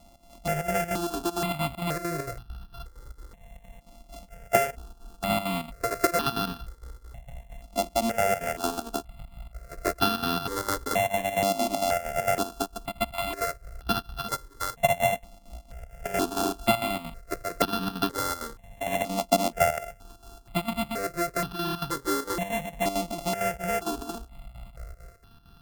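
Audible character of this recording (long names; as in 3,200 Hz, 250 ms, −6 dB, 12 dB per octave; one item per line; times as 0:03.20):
a buzz of ramps at a fixed pitch in blocks of 64 samples
chopped level 4.4 Hz, depth 65%, duty 70%
notches that jump at a steady rate 2.1 Hz 440–2,100 Hz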